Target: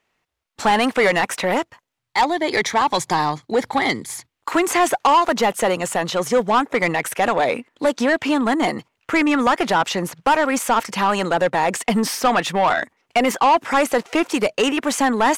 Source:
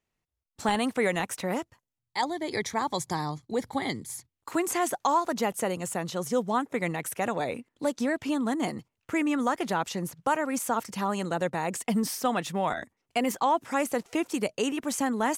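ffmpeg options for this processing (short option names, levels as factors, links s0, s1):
-filter_complex "[0:a]bass=f=250:g=0,treble=f=4000:g=-5,asplit=2[s0][s1];[s1]highpass=f=720:p=1,volume=6.31,asoftclip=type=tanh:threshold=0.2[s2];[s0][s2]amix=inputs=2:normalize=0,lowpass=f=5100:p=1,volume=0.501,volume=2.11"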